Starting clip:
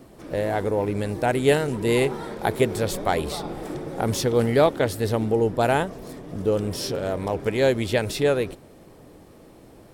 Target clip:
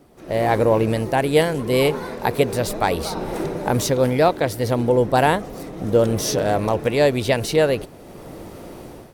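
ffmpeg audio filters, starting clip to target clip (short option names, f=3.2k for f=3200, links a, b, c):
-af "asetrate=48000,aresample=44100,dynaudnorm=f=140:g=5:m=16dB,volume=-4.5dB"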